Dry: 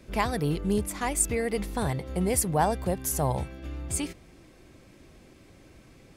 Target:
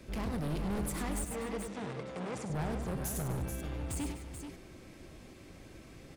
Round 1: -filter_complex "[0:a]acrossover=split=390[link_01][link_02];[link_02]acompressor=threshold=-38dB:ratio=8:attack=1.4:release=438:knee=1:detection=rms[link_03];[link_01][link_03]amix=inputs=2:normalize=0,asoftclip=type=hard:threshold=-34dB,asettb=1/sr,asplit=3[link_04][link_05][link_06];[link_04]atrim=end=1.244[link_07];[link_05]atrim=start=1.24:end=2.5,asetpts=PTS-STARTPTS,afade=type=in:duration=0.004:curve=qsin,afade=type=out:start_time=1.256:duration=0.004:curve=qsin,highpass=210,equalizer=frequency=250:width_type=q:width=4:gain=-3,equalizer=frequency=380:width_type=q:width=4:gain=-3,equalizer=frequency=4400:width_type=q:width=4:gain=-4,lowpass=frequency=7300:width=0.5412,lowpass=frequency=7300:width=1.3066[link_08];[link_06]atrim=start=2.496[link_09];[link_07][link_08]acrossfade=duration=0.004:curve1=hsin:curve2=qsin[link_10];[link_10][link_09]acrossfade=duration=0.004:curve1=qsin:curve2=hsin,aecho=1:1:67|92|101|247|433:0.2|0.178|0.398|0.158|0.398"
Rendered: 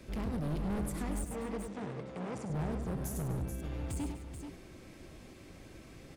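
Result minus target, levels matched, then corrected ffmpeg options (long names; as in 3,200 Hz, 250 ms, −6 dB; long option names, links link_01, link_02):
downward compressor: peak gain reduction +6.5 dB
-filter_complex "[0:a]acrossover=split=390[link_01][link_02];[link_02]acompressor=threshold=-30.5dB:ratio=8:attack=1.4:release=438:knee=1:detection=rms[link_03];[link_01][link_03]amix=inputs=2:normalize=0,asoftclip=type=hard:threshold=-34dB,asettb=1/sr,asplit=3[link_04][link_05][link_06];[link_04]atrim=end=1.244[link_07];[link_05]atrim=start=1.24:end=2.5,asetpts=PTS-STARTPTS,afade=type=in:duration=0.004:curve=qsin,afade=type=out:start_time=1.256:duration=0.004:curve=qsin,highpass=210,equalizer=frequency=250:width_type=q:width=4:gain=-3,equalizer=frequency=380:width_type=q:width=4:gain=-3,equalizer=frequency=4400:width_type=q:width=4:gain=-4,lowpass=frequency=7300:width=0.5412,lowpass=frequency=7300:width=1.3066[link_08];[link_06]atrim=start=2.496[link_09];[link_07][link_08]acrossfade=duration=0.004:curve1=hsin:curve2=qsin[link_10];[link_10][link_09]acrossfade=duration=0.004:curve1=qsin:curve2=hsin,aecho=1:1:67|92|101|247|433:0.2|0.178|0.398|0.158|0.398"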